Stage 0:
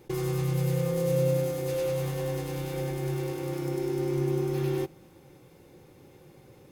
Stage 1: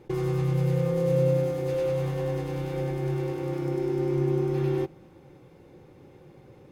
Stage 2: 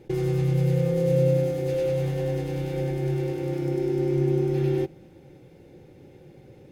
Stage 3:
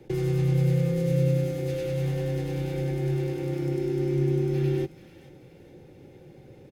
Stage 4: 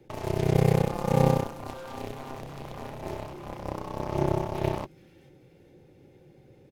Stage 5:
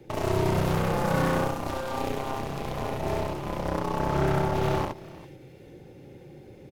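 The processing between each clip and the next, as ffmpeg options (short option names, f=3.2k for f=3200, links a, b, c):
-af "lowpass=f=2.1k:p=1,volume=2.5dB"
-af "equalizer=f=1.1k:w=2.5:g=-12.5,volume=2.5dB"
-filter_complex "[0:a]acrossover=split=170|370|1100[a][b][c][d];[c]acompressor=threshold=-37dB:ratio=6[e];[d]aecho=1:1:435|870|1305|1740:0.2|0.0818|0.0335|0.0138[f];[a][b][e][f]amix=inputs=4:normalize=0"
-af "aeval=exprs='0.211*(cos(1*acos(clip(val(0)/0.211,-1,1)))-cos(1*PI/2))+0.075*(cos(3*acos(clip(val(0)/0.211,-1,1)))-cos(3*PI/2))+0.00531*(cos(7*acos(clip(val(0)/0.211,-1,1)))-cos(7*PI/2))+0.00168*(cos(8*acos(clip(val(0)/0.211,-1,1)))-cos(8*PI/2))':c=same,volume=6.5dB"
-filter_complex "[0:a]volume=24dB,asoftclip=hard,volume=-24dB,asplit=2[a][b];[b]aecho=0:1:70|402:0.708|0.106[c];[a][c]amix=inputs=2:normalize=0,volume=6dB"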